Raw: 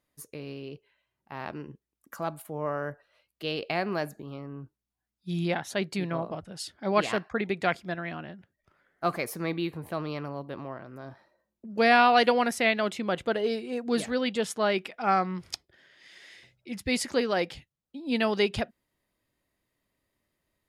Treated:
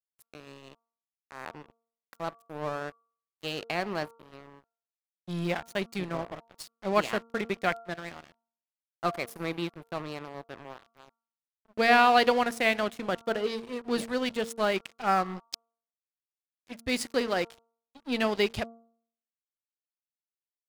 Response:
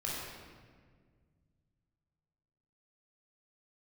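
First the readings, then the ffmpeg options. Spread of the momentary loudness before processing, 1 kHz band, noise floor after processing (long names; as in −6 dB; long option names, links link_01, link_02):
17 LU, −1.0 dB, below −85 dBFS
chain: -filter_complex "[0:a]asplit=2[link_01][link_02];[1:a]atrim=start_sample=2205,highshelf=frequency=5300:gain=10[link_03];[link_02][link_03]afir=irnorm=-1:irlink=0,volume=-24.5dB[link_04];[link_01][link_04]amix=inputs=2:normalize=0,aeval=exprs='sgn(val(0))*max(abs(val(0))-0.0141,0)':channel_layout=same,bandreject=frequency=229.9:width_type=h:width=4,bandreject=frequency=459.8:width_type=h:width=4,bandreject=frequency=689.7:width_type=h:width=4,bandreject=frequency=919.6:width_type=h:width=4,bandreject=frequency=1149.5:width_type=h:width=4,bandreject=frequency=1379.4:width_type=h:width=4"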